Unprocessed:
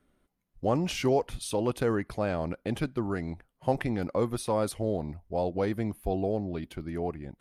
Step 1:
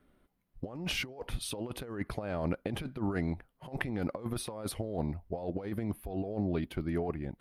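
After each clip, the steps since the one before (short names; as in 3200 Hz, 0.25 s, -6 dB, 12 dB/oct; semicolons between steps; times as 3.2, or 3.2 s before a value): bell 6900 Hz -8.5 dB 0.97 oct; negative-ratio compressor -32 dBFS, ratio -0.5; gain -1.5 dB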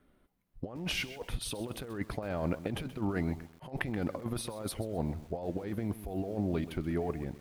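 lo-fi delay 0.129 s, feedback 35%, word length 8-bit, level -13.5 dB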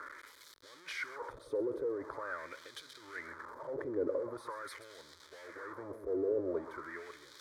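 zero-crossing step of -35 dBFS; wah 0.44 Hz 430–3700 Hz, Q 2.7; fixed phaser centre 740 Hz, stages 6; gain +6.5 dB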